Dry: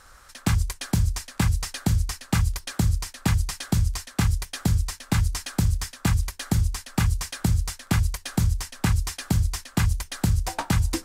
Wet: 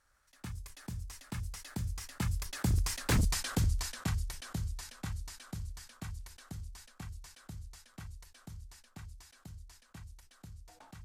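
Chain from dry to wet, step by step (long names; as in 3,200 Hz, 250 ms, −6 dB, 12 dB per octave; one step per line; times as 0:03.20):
source passing by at 0:03.15, 19 m/s, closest 5.9 metres
wave folding −19.5 dBFS
level that may fall only so fast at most 72 dB per second
level −2 dB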